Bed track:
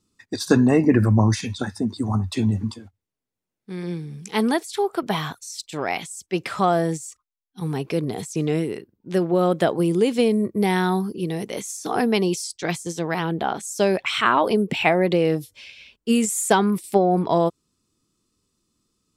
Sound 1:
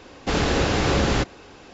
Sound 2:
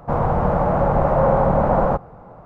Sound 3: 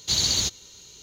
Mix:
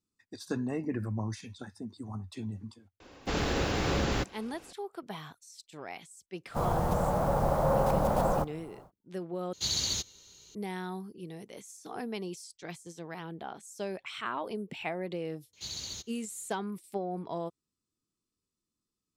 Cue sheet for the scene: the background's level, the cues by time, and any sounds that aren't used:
bed track −17 dB
0:03.00: mix in 1 −8.5 dB + one scale factor per block 7 bits
0:06.47: mix in 2 −10 dB, fades 0.10 s + one scale factor per block 5 bits
0:09.53: overwrite with 3 −8 dB
0:15.53: mix in 3 −17 dB

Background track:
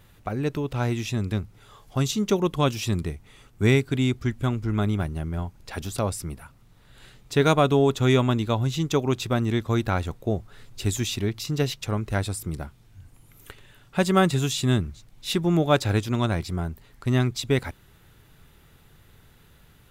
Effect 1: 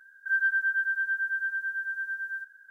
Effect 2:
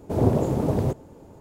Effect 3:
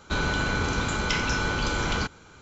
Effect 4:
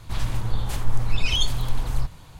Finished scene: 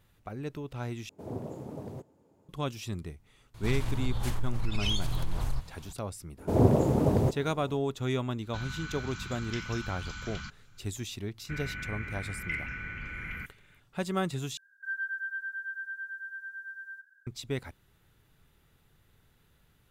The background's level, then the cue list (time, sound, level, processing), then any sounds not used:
background track −11 dB
0:01.09: overwrite with 2 −17 dB + high-pass filter 99 Hz
0:03.54: mix in 4 −4.5 dB + downward compressor, threshold −19 dBFS
0:06.38: mix in 2 −1.5 dB
0:08.43: mix in 3 −12.5 dB + Chebyshev band-stop filter 180–1,400 Hz
0:11.39: mix in 3 −13 dB + drawn EQ curve 160 Hz 0 dB, 470 Hz −12 dB, 930 Hz −16 dB, 2,100 Hz +14 dB, 3,800 Hz −21 dB
0:14.57: overwrite with 1 −9 dB

